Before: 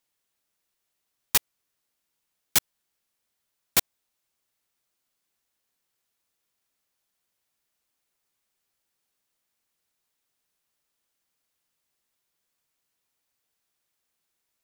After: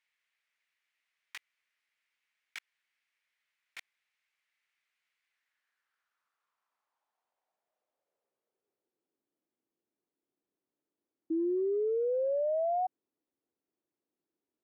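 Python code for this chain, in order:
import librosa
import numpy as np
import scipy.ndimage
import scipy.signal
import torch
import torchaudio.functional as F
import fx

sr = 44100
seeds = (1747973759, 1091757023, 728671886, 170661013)

y = fx.filter_sweep_bandpass(x, sr, from_hz=2100.0, to_hz=320.0, start_s=5.25, end_s=9.22, q=2.9)
y = fx.spec_paint(y, sr, seeds[0], shape='rise', start_s=11.3, length_s=1.57, low_hz=320.0, high_hz=750.0, level_db=-38.0)
y = fx.over_compress(y, sr, threshold_db=-38.0, ratio=-0.5)
y = F.gain(torch.from_numpy(y), 7.5).numpy()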